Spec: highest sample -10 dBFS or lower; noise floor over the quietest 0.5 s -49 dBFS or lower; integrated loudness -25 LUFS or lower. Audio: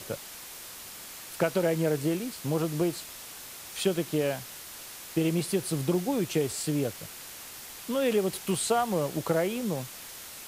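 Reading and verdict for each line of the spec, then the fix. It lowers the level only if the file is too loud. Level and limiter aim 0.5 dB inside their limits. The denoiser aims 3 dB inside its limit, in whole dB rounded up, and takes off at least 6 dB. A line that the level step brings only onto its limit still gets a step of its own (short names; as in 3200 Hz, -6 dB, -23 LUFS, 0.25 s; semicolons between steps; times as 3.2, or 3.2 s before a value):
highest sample -12.5 dBFS: OK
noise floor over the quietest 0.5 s -44 dBFS: fail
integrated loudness -29.5 LUFS: OK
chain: denoiser 8 dB, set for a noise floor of -44 dBFS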